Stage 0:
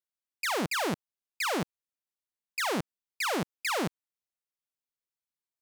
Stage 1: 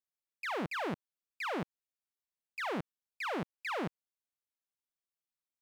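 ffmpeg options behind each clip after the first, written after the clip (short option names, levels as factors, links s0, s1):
-filter_complex "[0:a]acrossover=split=3300[s0][s1];[s1]acompressor=threshold=0.00282:ratio=4:attack=1:release=60[s2];[s0][s2]amix=inputs=2:normalize=0,volume=0.531"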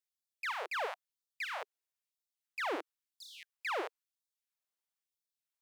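-af "afftfilt=real='re*gte(b*sr/1024,300*pow(3500/300,0.5+0.5*sin(2*PI*1*pts/sr)))':imag='im*gte(b*sr/1024,300*pow(3500/300,0.5+0.5*sin(2*PI*1*pts/sr)))':win_size=1024:overlap=0.75,volume=1.12"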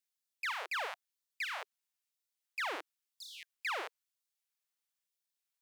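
-af "highpass=f=1400:p=1,volume=1.41"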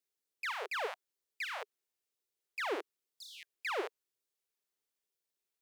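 -af "equalizer=f=400:t=o:w=0.82:g=14,volume=0.841"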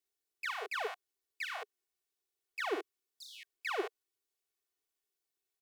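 -af "aecho=1:1:2.7:0.81,volume=0.75"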